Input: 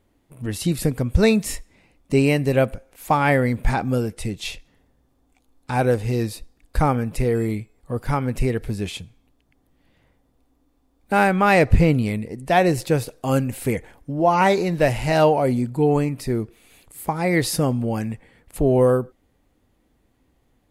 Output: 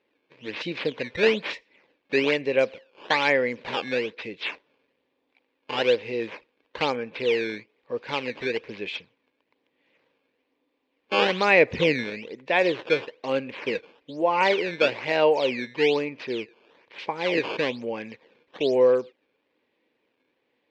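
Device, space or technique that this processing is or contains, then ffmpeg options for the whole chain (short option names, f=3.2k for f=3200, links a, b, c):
circuit-bent sampling toy: -filter_complex "[0:a]asettb=1/sr,asplit=3[a][b][c];[a]atrim=end=11.214[d];[b]atrim=start=11.21:end=12.04,asetpts=PTS-STARTPTS,afade=t=in:d=0.004:c=qsin,afade=t=out:st=0.826:d=0.004:c=qsin,lowshelf=f=260:g=5[e];[c]atrim=start=12.036[f];[d][e]acrossfade=d=0.004:c1=hsin:c2=qsin[g];[g][f]acrossfade=d=0.004:c1=qsin:c2=hsin,acrusher=samples=13:mix=1:aa=0.000001:lfo=1:lforange=20.8:lforate=1.1,highpass=460,equalizer=f=480:t=q:w=4:g=4,equalizer=f=720:t=q:w=4:g=-10,equalizer=f=1.3k:t=q:w=4:g=-9,equalizer=f=2.4k:t=q:w=4:g=6,lowpass=f=4k:w=0.5412,lowpass=f=4k:w=1.3066"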